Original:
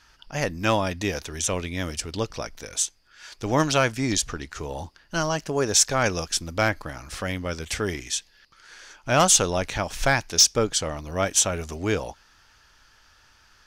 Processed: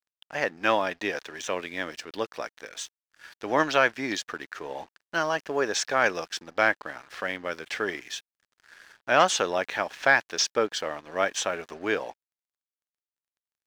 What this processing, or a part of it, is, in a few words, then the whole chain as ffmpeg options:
pocket radio on a weak battery: -af "highpass=350,lowpass=3.5k,aeval=exprs='sgn(val(0))*max(abs(val(0))-0.00316,0)':c=same,equalizer=f=1.7k:t=o:w=0.35:g=5.5"

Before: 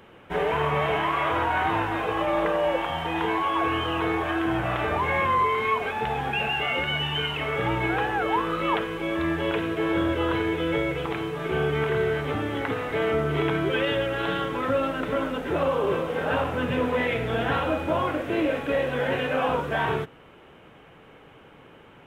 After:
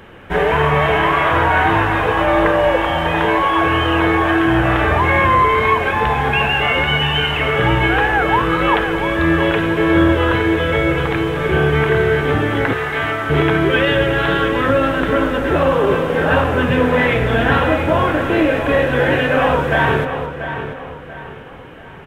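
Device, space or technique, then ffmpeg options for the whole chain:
ducked delay: -filter_complex "[0:a]asplit=3[a][b][c];[b]adelay=215,volume=-8dB[d];[c]apad=whole_len=982627[e];[d][e]sidechaincompress=threshold=-28dB:ratio=8:attack=16:release=685[f];[a][f]amix=inputs=2:normalize=0,lowshelf=f=86:g=10.5,asettb=1/sr,asplit=3[g][h][i];[g]atrim=end=12.734[j];[h]atrim=start=12.73:end=13.3,asetpts=PTS-STARTPTS,afade=t=in:d=0.004:c=qsin,afade=t=out:st=0.566:d=0.004:c=qsin,highpass=f=740:w=0.5412,highpass=f=740:w=1.3066[k];[i]atrim=start=13.296[l];[j][k]acrossfade=d=0.004:c1=hsin:c2=qsin[m];[m][l]acrossfade=d=0.004:c1=qsin:c2=hsin,equalizer=f=1.7k:w=4.5:g=5.5,asplit=2[n][o];[o]adelay=688,lowpass=f=4k:p=1,volume=-9.5dB,asplit=2[p][q];[q]adelay=688,lowpass=f=4k:p=1,volume=0.39,asplit=2[r][s];[s]adelay=688,lowpass=f=4k:p=1,volume=0.39,asplit=2[t][u];[u]adelay=688,lowpass=f=4k:p=1,volume=0.39[v];[n][p][r][t][v]amix=inputs=5:normalize=0,volume=8.5dB"

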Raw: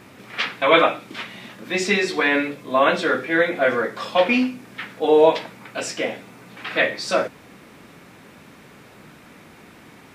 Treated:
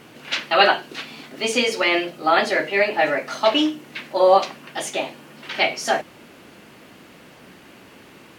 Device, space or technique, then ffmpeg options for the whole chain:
nightcore: -af "asetrate=53361,aresample=44100"

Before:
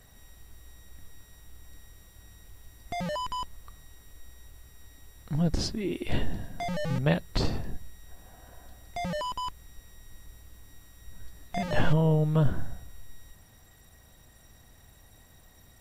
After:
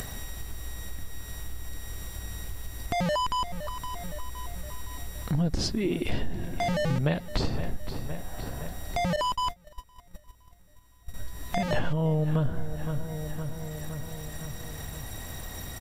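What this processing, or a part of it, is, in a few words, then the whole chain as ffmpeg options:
upward and downward compression: -filter_complex "[0:a]asplit=2[a][b];[b]adelay=515,lowpass=f=3.8k:p=1,volume=-15dB,asplit=2[c][d];[d]adelay=515,lowpass=f=3.8k:p=1,volume=0.5,asplit=2[e][f];[f]adelay=515,lowpass=f=3.8k:p=1,volume=0.5,asplit=2[g][h];[h]adelay=515,lowpass=f=3.8k:p=1,volume=0.5,asplit=2[i][j];[j]adelay=515,lowpass=f=3.8k:p=1,volume=0.5[k];[a][c][e][g][i][k]amix=inputs=6:normalize=0,acompressor=mode=upward:threshold=-31dB:ratio=2.5,acompressor=threshold=-28dB:ratio=5,asettb=1/sr,asplit=3[l][m][n];[l]atrim=end=9.164[o];[m]atrim=start=9.16:end=11.14,asetpts=PTS-STARTPTS,afade=t=in:d=0.004:c=qsin,afade=t=out:st=1.976:d=0.004:c=qsin,agate=range=-22dB:threshold=-35dB:ratio=16:detection=peak[p];[n]atrim=start=11.136[q];[o][p]acrossfade=d=0.004:c1=hsin:c2=qsin[r];[r][q]acrossfade=d=0.004:c1=qsin:c2=hsin,volume=5.5dB"

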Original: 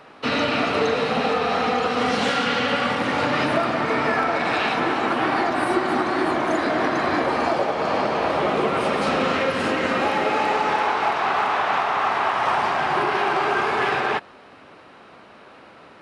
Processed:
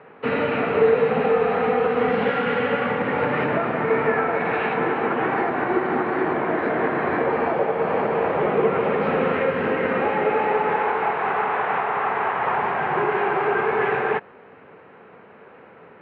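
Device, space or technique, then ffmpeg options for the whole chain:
bass cabinet: -af "highpass=78,equalizer=f=170:t=q:w=4:g=4,equalizer=f=300:t=q:w=4:g=-5,equalizer=f=450:t=q:w=4:g=8,equalizer=f=630:t=q:w=4:g=-4,equalizer=f=1.2k:t=q:w=4:g=-4,lowpass=f=2.3k:w=0.5412,lowpass=f=2.3k:w=1.3066"

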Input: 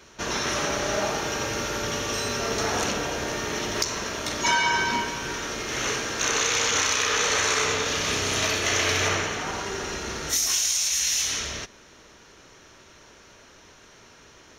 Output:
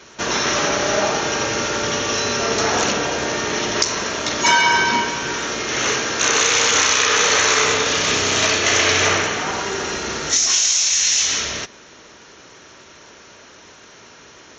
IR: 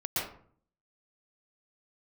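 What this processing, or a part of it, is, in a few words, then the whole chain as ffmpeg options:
Bluetooth headset: -af "highpass=f=140:p=1,aresample=16000,aresample=44100,volume=7.5dB" -ar 16000 -c:a sbc -b:a 64k

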